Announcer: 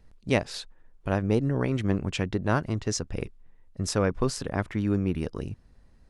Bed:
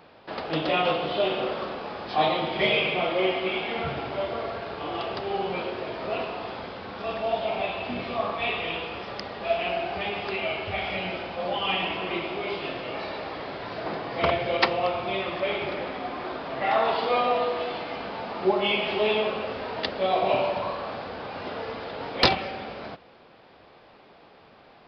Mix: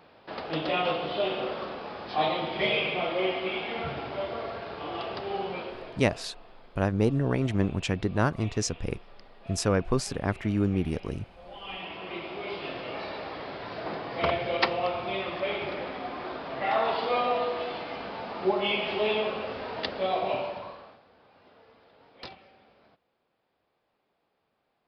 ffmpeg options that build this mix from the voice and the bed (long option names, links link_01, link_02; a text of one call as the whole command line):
ffmpeg -i stem1.wav -i stem2.wav -filter_complex "[0:a]adelay=5700,volume=0dB[link_01];[1:a]volume=13dB,afade=type=out:start_time=5.39:duration=0.84:silence=0.158489,afade=type=in:start_time=11.43:duration=1.38:silence=0.149624,afade=type=out:start_time=20:duration=1:silence=0.0944061[link_02];[link_01][link_02]amix=inputs=2:normalize=0" out.wav